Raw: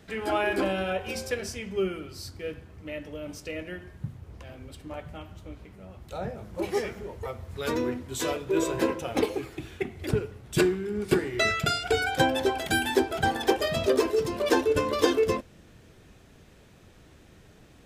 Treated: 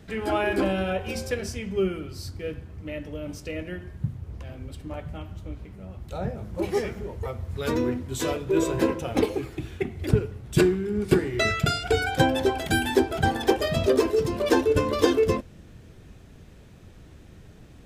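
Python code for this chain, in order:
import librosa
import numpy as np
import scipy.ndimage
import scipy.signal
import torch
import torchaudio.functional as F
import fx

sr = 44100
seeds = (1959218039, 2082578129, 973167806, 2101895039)

y = fx.low_shelf(x, sr, hz=260.0, db=8.5)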